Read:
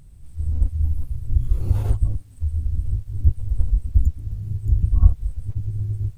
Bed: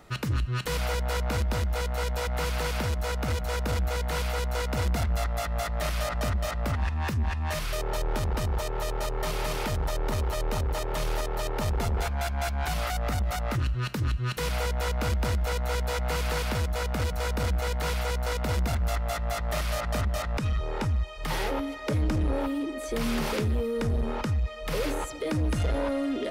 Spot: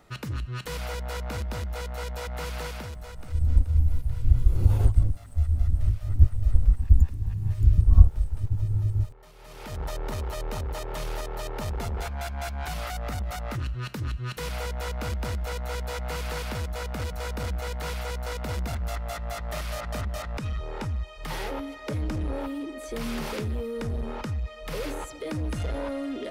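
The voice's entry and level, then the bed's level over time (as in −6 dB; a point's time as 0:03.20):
2.95 s, 0.0 dB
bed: 0:02.63 −4.5 dB
0:03.61 −22.5 dB
0:09.34 −22.5 dB
0:09.81 −3.5 dB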